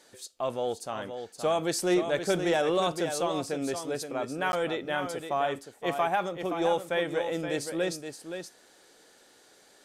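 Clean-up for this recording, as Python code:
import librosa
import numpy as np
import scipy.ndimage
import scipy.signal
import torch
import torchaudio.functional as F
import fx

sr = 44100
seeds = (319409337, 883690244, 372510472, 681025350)

y = fx.fix_interpolate(x, sr, at_s=(4.52,), length_ms=11.0)
y = fx.fix_echo_inverse(y, sr, delay_ms=522, level_db=-8.0)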